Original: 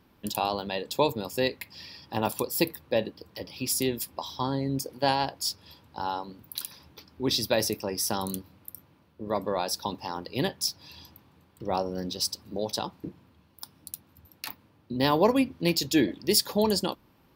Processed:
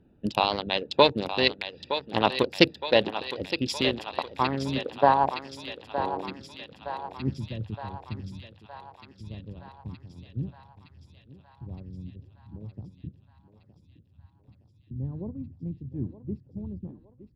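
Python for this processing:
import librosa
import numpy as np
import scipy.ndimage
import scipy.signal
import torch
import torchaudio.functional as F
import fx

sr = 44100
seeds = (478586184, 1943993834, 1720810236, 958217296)

p1 = fx.wiener(x, sr, points=41)
p2 = fx.filter_sweep_lowpass(p1, sr, from_hz=3400.0, to_hz=110.0, start_s=3.85, end_s=7.69, q=2.2)
p3 = fx.hpss(p2, sr, part='percussive', gain_db=8)
p4 = p3 + fx.echo_thinned(p3, sr, ms=916, feedback_pct=65, hz=470.0, wet_db=-9.0, dry=0)
p5 = fx.doppler_dist(p4, sr, depth_ms=0.12)
y = F.gain(torch.from_numpy(p5), -1.0).numpy()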